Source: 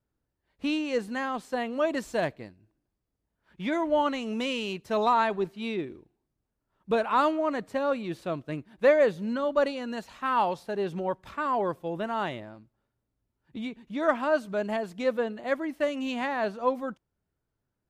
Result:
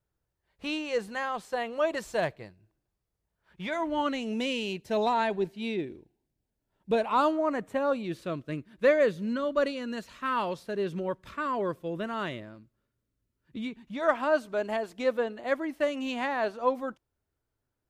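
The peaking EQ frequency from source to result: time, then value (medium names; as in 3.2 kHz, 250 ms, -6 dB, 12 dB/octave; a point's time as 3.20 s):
peaking EQ -12.5 dB 0.4 oct
3.67 s 260 Hz
4.19 s 1.2 kHz
6.97 s 1.2 kHz
7.75 s 5.3 kHz
8.14 s 800 Hz
13.61 s 800 Hz
14.23 s 180 Hz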